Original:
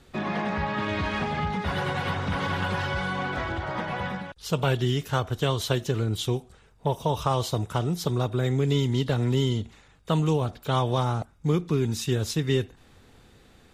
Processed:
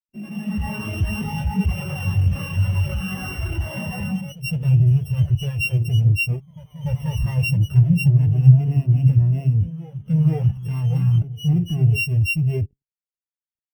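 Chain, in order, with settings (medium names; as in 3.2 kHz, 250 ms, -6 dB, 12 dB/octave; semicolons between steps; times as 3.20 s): sorted samples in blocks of 16 samples; bass shelf 70 Hz +9.5 dB; fuzz box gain 41 dB, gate -43 dBFS; level rider gain up to 4 dB; treble shelf 8.1 kHz +10.5 dB; de-hum 137.5 Hz, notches 3; ever faster or slower copies 95 ms, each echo +1 st, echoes 3, each echo -6 dB; band-stop 7.2 kHz, Q 6.8; spectral contrast expander 2.5:1; trim -5 dB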